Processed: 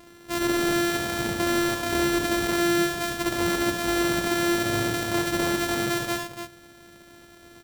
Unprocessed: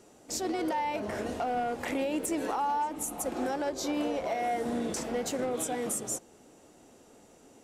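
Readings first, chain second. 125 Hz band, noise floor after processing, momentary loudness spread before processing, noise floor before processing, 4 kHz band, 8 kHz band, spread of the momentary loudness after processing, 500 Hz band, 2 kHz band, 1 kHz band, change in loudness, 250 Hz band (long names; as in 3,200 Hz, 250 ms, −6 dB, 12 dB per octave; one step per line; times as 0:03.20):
+14.0 dB, −50 dBFS, 3 LU, −58 dBFS, +14.0 dB, +4.0 dB, 5 LU, +5.5 dB, +14.0 dB, +2.0 dB, +7.5 dB, +8.5 dB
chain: samples sorted by size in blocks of 128 samples
multi-tap delay 43/69/76/289 ms −18.5/−8.5/−9.5/−8.5 dB
level +7 dB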